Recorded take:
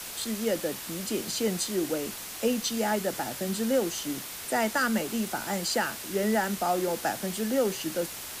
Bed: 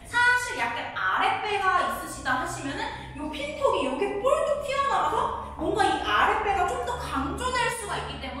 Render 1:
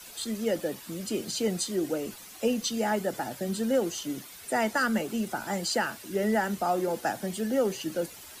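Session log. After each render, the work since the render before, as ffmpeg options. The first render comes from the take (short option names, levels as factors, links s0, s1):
-af "afftdn=nr=11:nf=-40"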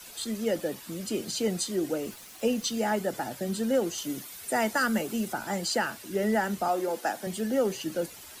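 -filter_complex "[0:a]asettb=1/sr,asplit=3[s0][s1][s2];[s0]atrim=end=2.034[s3];[s1]atrim=start=2.03:end=2.82,asetpts=PTS-STARTPTS,afade=t=in:d=0.004:c=qsin,afade=t=out:st=0.786:d=0.004:c=qsin,aeval=exprs='val(0)*gte(abs(val(0)),0.00422)':c=same[s4];[s2]atrim=start=2.816[s5];[s3][s4]acrossfade=d=0.004:c1=hsin:c2=qsin[s6];[s6][s5]acrossfade=d=0.004:c1=qsin:c2=hsin,asettb=1/sr,asplit=3[s7][s8][s9];[s7]atrim=end=3.984[s10];[s8]atrim=start=3.98:end=5.33,asetpts=PTS-STARTPTS,afade=t=in:d=0.004:c=qsin,afade=t=out:st=1.346:d=0.004:c=qsin,highshelf=f=7500:g=5.5[s11];[s9]atrim=start=5.326[s12];[s10][s11]acrossfade=d=0.004:c1=hsin:c2=qsin[s13];[s13][s12]acrossfade=d=0.004:c1=qsin:c2=hsin,asettb=1/sr,asplit=3[s14][s15][s16];[s14]atrim=end=6.684[s17];[s15]atrim=start=6.68:end=7.27,asetpts=PTS-STARTPTS,afade=t=in:d=0.004:c=qsin,afade=t=out:st=0.586:d=0.004:c=qsin,highpass=280[s18];[s16]atrim=start=7.266[s19];[s17][s18]acrossfade=d=0.004:c1=hsin:c2=qsin[s20];[s20][s19]acrossfade=d=0.004:c1=qsin:c2=hsin"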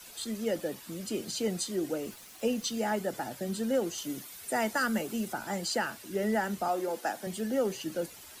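-af "volume=0.708"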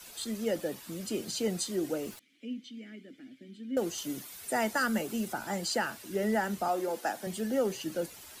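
-filter_complex "[0:a]asettb=1/sr,asplit=3[s0][s1][s2];[s0]atrim=end=2.194[s3];[s1]atrim=start=2.19:end=3.77,asetpts=PTS-STARTPTS,afade=t=in:d=0.004:c=qsin,afade=t=out:st=1.576:d=0.004:c=qsin,asplit=3[s4][s5][s6];[s4]bandpass=f=270:t=q:w=8,volume=1[s7];[s5]bandpass=f=2290:t=q:w=8,volume=0.501[s8];[s6]bandpass=f=3010:t=q:w=8,volume=0.355[s9];[s7][s8][s9]amix=inputs=3:normalize=0[s10];[s2]atrim=start=3.766[s11];[s3][s10]acrossfade=d=0.004:c1=hsin:c2=qsin[s12];[s12][s11]acrossfade=d=0.004:c1=qsin:c2=hsin"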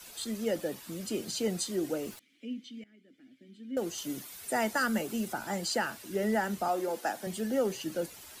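-filter_complex "[0:a]asplit=2[s0][s1];[s0]atrim=end=2.84,asetpts=PTS-STARTPTS,afade=t=out:st=2.836:d=0.004:c=hsin:silence=0.141254[s2];[s1]atrim=start=2.84,asetpts=PTS-STARTPTS,afade=t=in:d=1.29:silence=0.141254[s3];[s2][s3]concat=n=2:v=0:a=1"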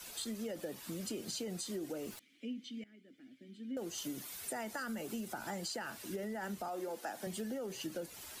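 -af "alimiter=level_in=1.06:limit=0.0631:level=0:latency=1,volume=0.944,acompressor=threshold=0.0126:ratio=6"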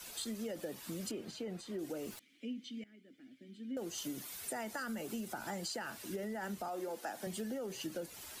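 -filter_complex "[0:a]asettb=1/sr,asplit=3[s0][s1][s2];[s0]atrim=end=1.114[s3];[s1]atrim=start=1.11:end=1.79,asetpts=PTS-STARTPTS,afade=t=in:d=0.004:c=qsin,afade=t=out:st=0.676:d=0.004:c=qsin,bass=f=250:g=-2,treble=f=4000:g=-14[s4];[s2]atrim=start=1.786[s5];[s3][s4]acrossfade=d=0.004:c1=hsin:c2=qsin[s6];[s6][s5]acrossfade=d=0.004:c1=qsin:c2=hsin"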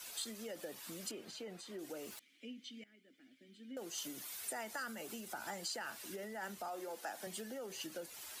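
-af "lowshelf=f=360:g=-12"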